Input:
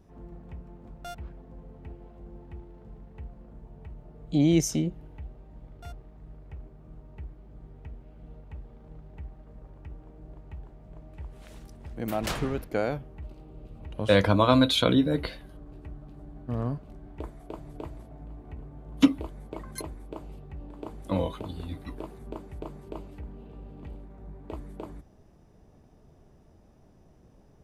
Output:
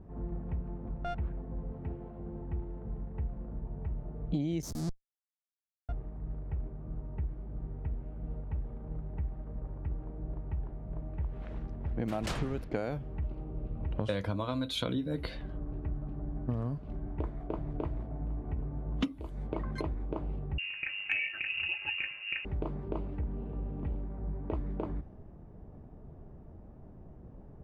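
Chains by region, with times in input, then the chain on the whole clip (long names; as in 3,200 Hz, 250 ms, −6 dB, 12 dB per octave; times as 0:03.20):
0:01.72–0:02.41: high-pass filter 73 Hz + high-shelf EQ 3,600 Hz +6 dB
0:04.62–0:05.89: comparator with hysteresis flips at −30.5 dBFS + drawn EQ curve 420 Hz 0 dB, 680 Hz −4 dB, 2,800 Hz −14 dB, 4,700 Hz +5 dB
0:20.58–0:22.45: comb filter 4.1 ms, depth 63% + voice inversion scrambler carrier 2,800 Hz
whole clip: low-pass that shuts in the quiet parts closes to 1,300 Hz, open at −24 dBFS; low-shelf EQ 260 Hz +5.5 dB; downward compressor 16 to 1, threshold −32 dBFS; level +3 dB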